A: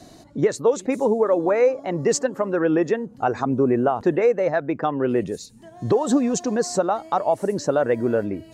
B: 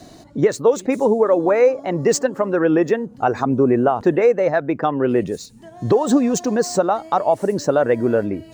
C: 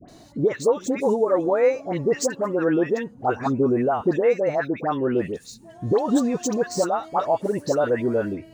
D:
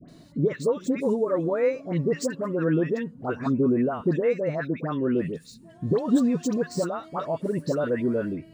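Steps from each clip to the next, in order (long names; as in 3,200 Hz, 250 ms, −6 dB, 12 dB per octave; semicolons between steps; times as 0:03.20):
running median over 3 samples; level +3.5 dB
all-pass dispersion highs, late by 87 ms, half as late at 1,300 Hz; level −4.5 dB
thirty-one-band graphic EQ 160 Hz +11 dB, 250 Hz +5 dB, 800 Hz −11 dB, 6,300 Hz −7 dB, 16,000 Hz −8 dB; level −4 dB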